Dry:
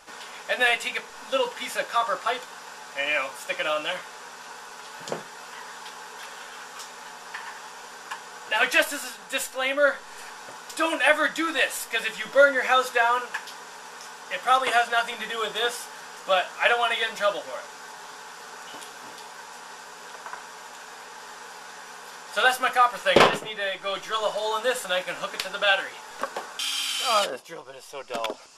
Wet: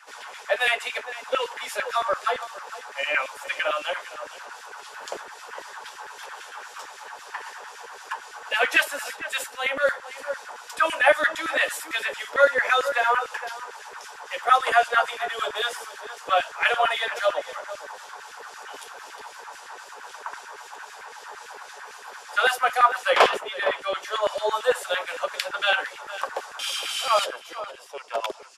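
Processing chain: outdoor echo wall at 79 m, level -13 dB; LFO high-pass saw down 8.9 Hz 330–2000 Hz; harmonic tremolo 3.8 Hz, depth 50%, crossover 2300 Hz

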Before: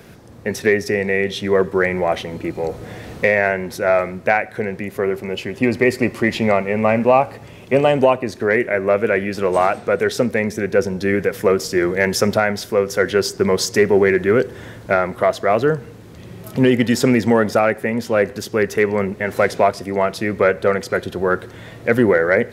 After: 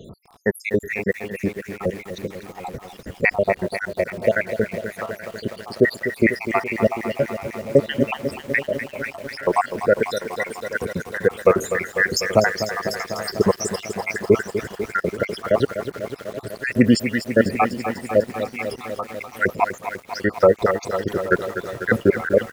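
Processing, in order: random spectral dropouts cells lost 83%; feedback echo 0.829 s, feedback 28%, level -17.5 dB; lo-fi delay 0.248 s, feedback 80%, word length 7-bit, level -10 dB; gain +3 dB

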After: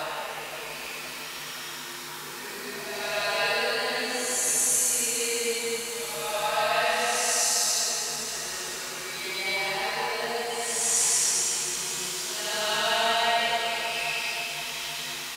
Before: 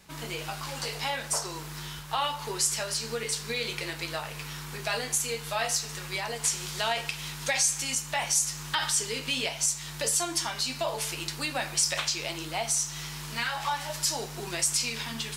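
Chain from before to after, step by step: notches 50/100/150 Hz; Paulstretch 4.9×, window 0.25 s, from 4.21; on a send: feedback echo 0.52 s, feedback 53%, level -10 dB; on the sum: gain +3.5 dB

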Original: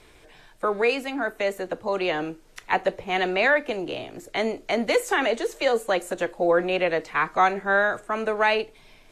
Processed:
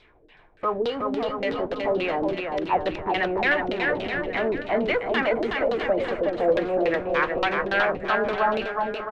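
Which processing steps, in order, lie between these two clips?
one-sided fold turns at -15.5 dBFS; spectral repair 0.46–1.3, 1300–2800 Hz; in parallel at -7 dB: Schmitt trigger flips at -35.5 dBFS; on the sum: LFO low-pass saw down 3.5 Hz 260–4000 Hz; bouncing-ball echo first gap 0.37 s, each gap 0.8×, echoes 5; gain -6 dB

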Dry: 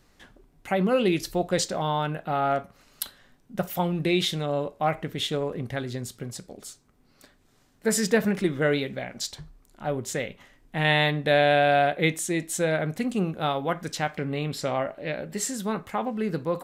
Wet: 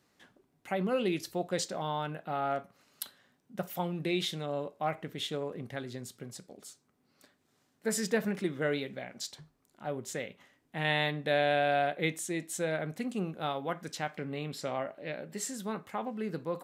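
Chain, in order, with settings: HPF 130 Hz 12 dB/oct; gain -7.5 dB

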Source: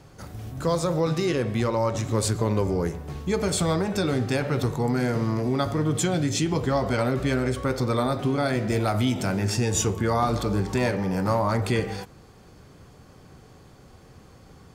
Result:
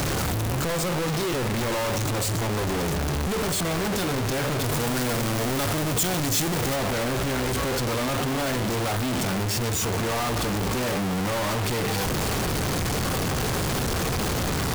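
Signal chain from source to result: infinite clipping; 4.64–6.76 high shelf 5700 Hz +6.5 dB

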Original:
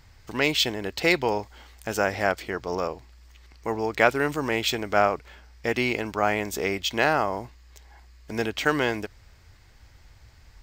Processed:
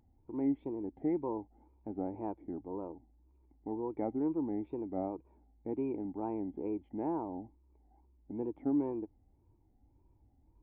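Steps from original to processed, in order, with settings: vocal tract filter u; wow and flutter 150 cents

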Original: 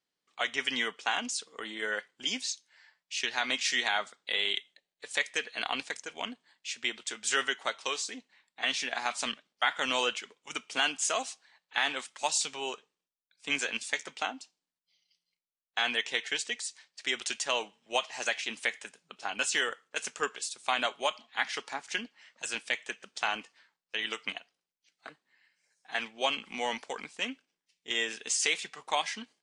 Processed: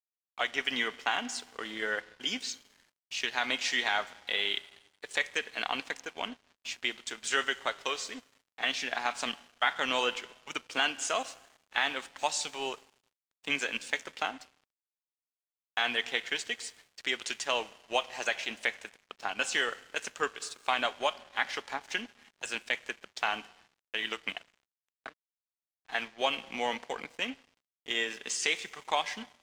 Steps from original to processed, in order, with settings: in parallel at -2.5 dB: compressor 5:1, threshold -41 dBFS, peak gain reduction 17 dB; on the sum: Schroeder reverb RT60 2.2 s, combs from 33 ms, DRR 14.5 dB; crossover distortion -48 dBFS; high shelf 7200 Hz -11.5 dB

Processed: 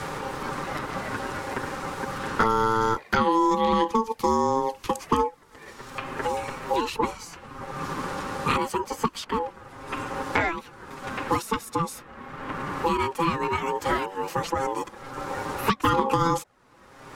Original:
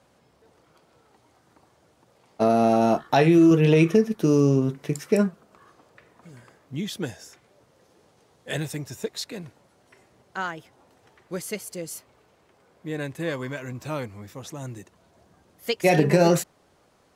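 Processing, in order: envelope flanger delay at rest 8 ms, full sweep at -15 dBFS; ring modulator 670 Hz; three-band squash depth 100%; gain +5.5 dB

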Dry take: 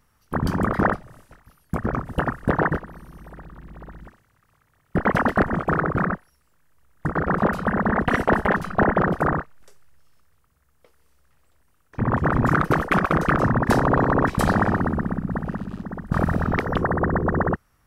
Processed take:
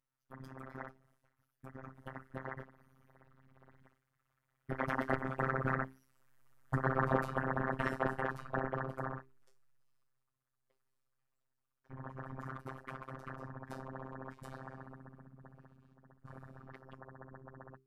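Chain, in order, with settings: Doppler pass-by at 6.45, 18 m/s, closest 13 m; notches 60/120/180/240/300/360/420 Hz; robotiser 132 Hz; gain -5.5 dB

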